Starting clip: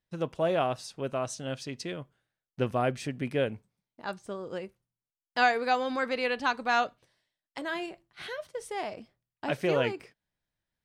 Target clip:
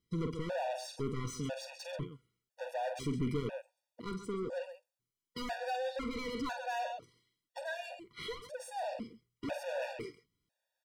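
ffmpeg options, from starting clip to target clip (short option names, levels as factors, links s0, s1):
-filter_complex "[0:a]equalizer=f=1400:t=o:w=2.9:g=-13.5,asplit=2[s0][s1];[s1]aecho=0:1:48|134:0.237|0.15[s2];[s0][s2]amix=inputs=2:normalize=0,asplit=2[s3][s4];[s4]highpass=f=720:p=1,volume=39.8,asoftclip=type=tanh:threshold=0.112[s5];[s3][s5]amix=inputs=2:normalize=0,lowpass=f=2400:p=1,volume=0.501,lowshelf=f=140:g=9.5,afftfilt=real='re*gt(sin(2*PI*1*pts/sr)*(1-2*mod(floor(b*sr/1024/480),2)),0)':imag='im*gt(sin(2*PI*1*pts/sr)*(1-2*mod(floor(b*sr/1024/480),2)),0)':win_size=1024:overlap=0.75,volume=0.376"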